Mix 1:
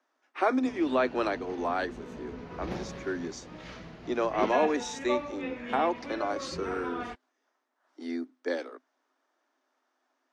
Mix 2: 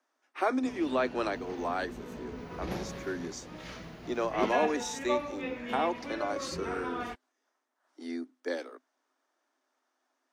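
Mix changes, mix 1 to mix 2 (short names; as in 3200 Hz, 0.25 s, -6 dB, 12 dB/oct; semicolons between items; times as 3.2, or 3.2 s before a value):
speech -3.0 dB; master: remove air absorption 69 m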